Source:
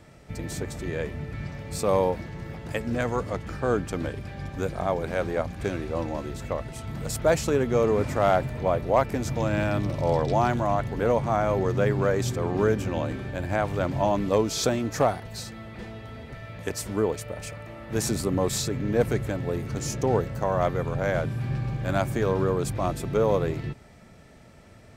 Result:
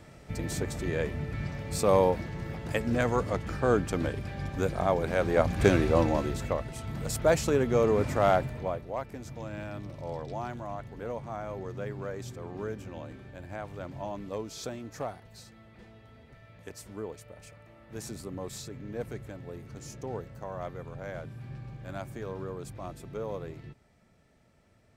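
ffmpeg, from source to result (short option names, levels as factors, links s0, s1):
-af "volume=2.37,afade=t=in:st=5.24:d=0.44:silence=0.421697,afade=t=out:st=5.68:d=0.95:silence=0.334965,afade=t=out:st=8.31:d=0.55:silence=0.266073"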